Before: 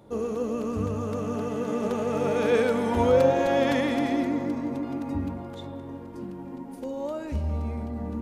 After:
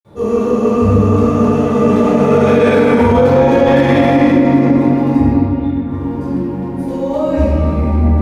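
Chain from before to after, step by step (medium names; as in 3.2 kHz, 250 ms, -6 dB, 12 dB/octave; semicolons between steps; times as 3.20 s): 5.24–5.82 s: band-pass filter 4.9 kHz -> 1.3 kHz, Q 4.9; reverberation RT60 2.8 s, pre-delay 47 ms; loudness maximiser -0.5 dB; trim -1 dB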